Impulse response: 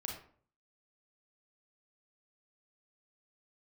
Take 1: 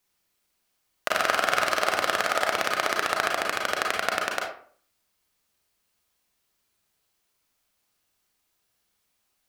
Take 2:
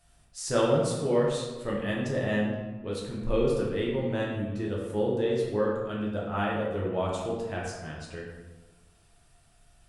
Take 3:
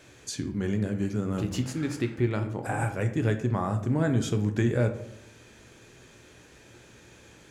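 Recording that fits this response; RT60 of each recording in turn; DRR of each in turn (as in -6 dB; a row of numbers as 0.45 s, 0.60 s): 1; 0.50 s, 1.3 s, 0.75 s; -0.5 dB, -4.0 dB, 6.5 dB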